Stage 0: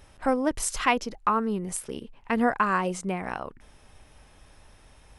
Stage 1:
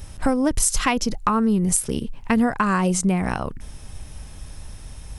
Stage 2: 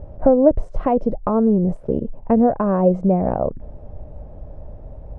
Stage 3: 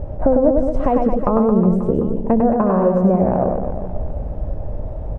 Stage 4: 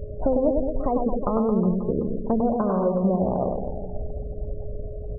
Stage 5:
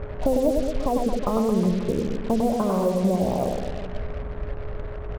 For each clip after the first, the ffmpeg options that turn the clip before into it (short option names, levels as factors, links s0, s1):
-af "bass=f=250:g=12,treble=f=4000:g=10,acompressor=threshold=0.0794:ratio=6,volume=2"
-af "lowpass=f=600:t=q:w=4.3,volume=1.19"
-af "acompressor=threshold=0.0501:ratio=2.5,aecho=1:1:100|220|364|536.8|744.2:0.631|0.398|0.251|0.158|0.1,volume=2.66"
-af "aeval=exprs='val(0)+0.0251*sin(2*PI*420*n/s)':c=same,afftfilt=real='re*gte(hypot(re,im),0.0501)':imag='im*gte(hypot(re,im),0.0501)':win_size=1024:overlap=0.75,volume=0.447"
-af "acrusher=bits=5:mix=0:aa=0.5"